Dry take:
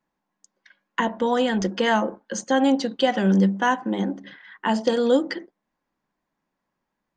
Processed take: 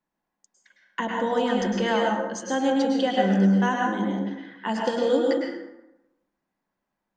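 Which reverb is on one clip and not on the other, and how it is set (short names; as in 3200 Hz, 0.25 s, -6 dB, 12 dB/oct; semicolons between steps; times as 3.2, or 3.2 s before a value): plate-style reverb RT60 0.95 s, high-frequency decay 0.55×, pre-delay 95 ms, DRR -1 dB; gain -5.5 dB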